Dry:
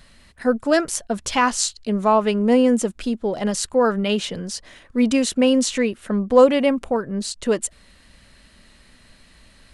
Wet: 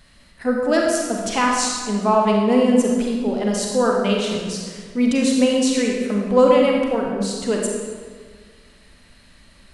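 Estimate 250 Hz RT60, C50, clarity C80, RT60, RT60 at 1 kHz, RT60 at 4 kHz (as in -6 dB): 1.9 s, 0.5 dB, 3.0 dB, 1.7 s, 1.6 s, 1.2 s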